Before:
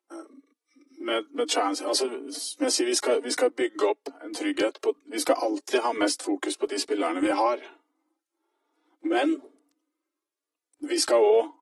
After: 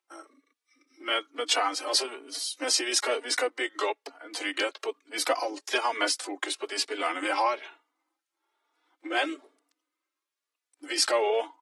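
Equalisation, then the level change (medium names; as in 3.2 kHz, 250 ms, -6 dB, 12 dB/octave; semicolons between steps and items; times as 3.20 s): tilt shelf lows -7 dB, about 820 Hz; bass shelf 310 Hz -11.5 dB; treble shelf 5.5 kHz -10.5 dB; 0.0 dB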